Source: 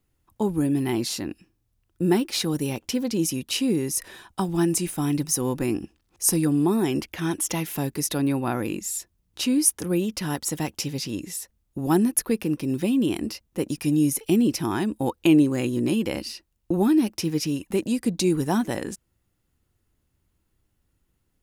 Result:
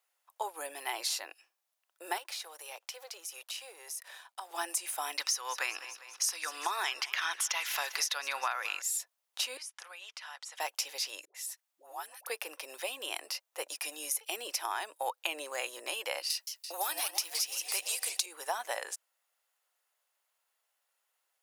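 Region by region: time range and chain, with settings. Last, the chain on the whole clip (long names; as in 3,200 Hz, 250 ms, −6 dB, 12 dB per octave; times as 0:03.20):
0:02.18–0:04.51: mu-law and A-law mismatch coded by A + Butterworth high-pass 320 Hz + downward compressor, threshold −37 dBFS
0:05.18–0:08.82: flat-topped bell 2,600 Hz +12 dB 2.9 octaves + repeating echo 199 ms, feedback 55%, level −19.5 dB
0:09.57–0:10.60: high-pass filter 1,200 Hz + high-frequency loss of the air 83 metres + downward compressor, threshold −41 dBFS
0:11.25–0:12.27: low-shelf EQ 350 Hz −11.5 dB + downward compressor 2 to 1, threshold −41 dBFS + all-pass dispersion highs, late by 96 ms, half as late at 610 Hz
0:16.30–0:18.26: spectral tilt +3.5 dB per octave + feedback echo with a swinging delay time 169 ms, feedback 65%, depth 204 cents, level −10 dB
whole clip: Butterworth high-pass 590 Hz 36 dB per octave; downward compressor 12 to 1, threshold −29 dBFS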